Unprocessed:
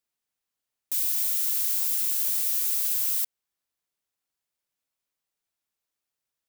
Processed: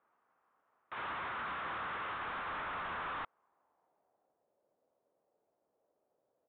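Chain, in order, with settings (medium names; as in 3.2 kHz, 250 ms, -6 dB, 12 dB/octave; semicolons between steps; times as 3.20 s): gate -23 dBFS, range -19 dB; low-pass sweep 1.2 kHz -> 570 Hz, 3.23–4.48 s; overdrive pedal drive 33 dB, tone 1 kHz, clips at -41.5 dBFS; 0.94–2.19 s: frequency shift +42 Hz; resampled via 8 kHz; trim +13.5 dB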